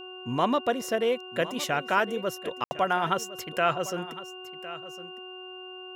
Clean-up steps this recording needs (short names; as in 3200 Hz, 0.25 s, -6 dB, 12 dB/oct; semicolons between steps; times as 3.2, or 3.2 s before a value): de-hum 369.4 Hz, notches 4; notch 2800 Hz, Q 30; room tone fill 2.64–2.71; inverse comb 1.058 s -15.5 dB